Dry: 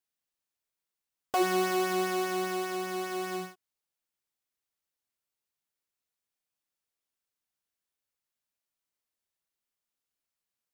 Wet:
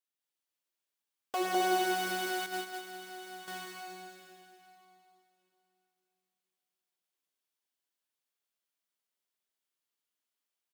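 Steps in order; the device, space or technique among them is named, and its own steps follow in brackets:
stadium PA (high-pass filter 230 Hz 12 dB per octave; parametric band 3,200 Hz +3 dB 0.49 octaves; loudspeakers that aren't time-aligned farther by 70 metres −1 dB, 90 metres −8 dB; convolution reverb RT60 3.1 s, pre-delay 97 ms, DRR 1.5 dB)
0:02.46–0:03.48: noise gate −29 dBFS, range −8 dB
level −6 dB

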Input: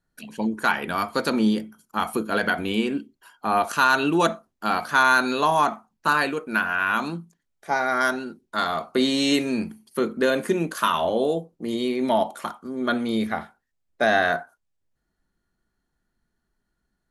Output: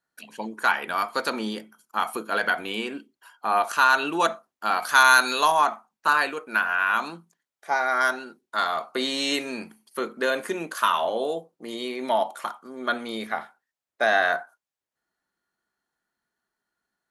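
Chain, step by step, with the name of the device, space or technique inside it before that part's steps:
filter by subtraction (in parallel: low-pass filter 970 Hz 12 dB per octave + polarity inversion)
0:04.82–0:05.52: on the sum: high-shelf EQ 3,600 Hz +12 dB
level −1.5 dB

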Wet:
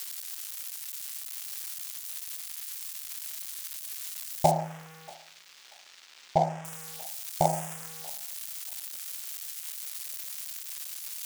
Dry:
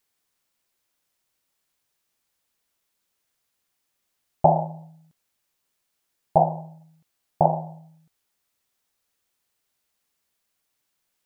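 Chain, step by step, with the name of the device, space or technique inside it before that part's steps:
budget class-D amplifier (gap after every zero crossing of 0.12 ms; spike at every zero crossing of −13 dBFS)
0:04.51–0:06.65: high-frequency loss of the air 170 metres
feedback echo with a high-pass in the loop 635 ms, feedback 41%, high-pass 1,100 Hz, level −20 dB
level −5.5 dB

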